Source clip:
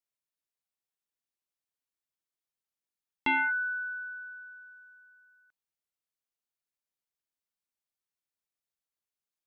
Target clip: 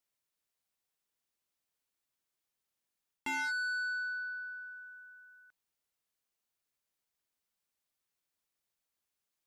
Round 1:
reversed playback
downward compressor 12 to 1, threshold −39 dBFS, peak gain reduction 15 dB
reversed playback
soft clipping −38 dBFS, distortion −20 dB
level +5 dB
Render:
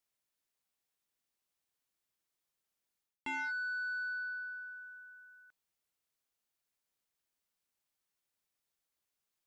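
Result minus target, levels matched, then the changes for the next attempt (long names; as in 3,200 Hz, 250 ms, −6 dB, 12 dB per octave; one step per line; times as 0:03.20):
downward compressor: peak gain reduction +7.5 dB
change: downward compressor 12 to 1, threshold −31 dBFS, peak gain reduction 8 dB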